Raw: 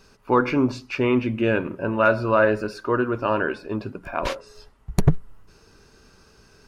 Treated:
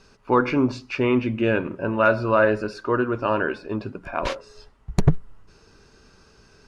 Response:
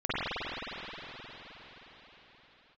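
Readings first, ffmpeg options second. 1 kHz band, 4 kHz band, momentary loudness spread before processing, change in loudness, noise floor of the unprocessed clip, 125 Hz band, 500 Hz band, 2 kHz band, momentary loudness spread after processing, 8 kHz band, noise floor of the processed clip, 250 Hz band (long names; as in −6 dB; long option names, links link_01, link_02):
0.0 dB, 0.0 dB, 11 LU, 0.0 dB, −55 dBFS, 0.0 dB, 0.0 dB, 0.0 dB, 11 LU, can't be measured, −56 dBFS, 0.0 dB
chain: -af "lowpass=8000"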